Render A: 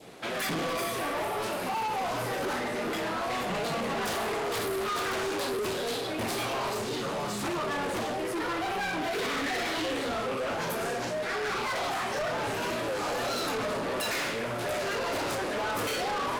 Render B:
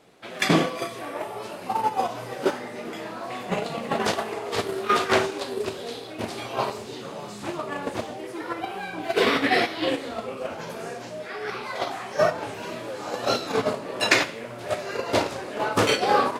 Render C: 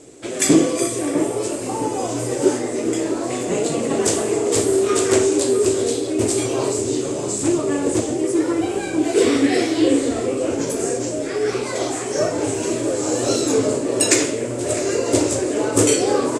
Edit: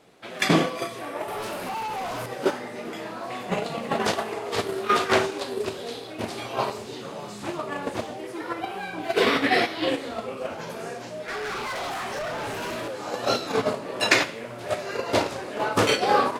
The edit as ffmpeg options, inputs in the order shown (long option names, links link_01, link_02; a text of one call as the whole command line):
ffmpeg -i take0.wav -i take1.wav -filter_complex "[0:a]asplit=2[link_01][link_02];[1:a]asplit=3[link_03][link_04][link_05];[link_03]atrim=end=1.282[link_06];[link_01]atrim=start=1.278:end=2.262[link_07];[link_04]atrim=start=2.258:end=11.282[link_08];[link_02]atrim=start=11.278:end=12.882[link_09];[link_05]atrim=start=12.878[link_10];[link_06][link_07]acrossfade=duration=0.004:curve1=hsin:curve2=hsin[link_11];[link_11][link_08]acrossfade=duration=0.004:curve1=hsin:curve2=hsin[link_12];[link_12][link_09]acrossfade=duration=0.004:curve1=hsin:curve2=hsin[link_13];[link_13][link_10]acrossfade=duration=0.004:curve1=hsin:curve2=hsin" out.wav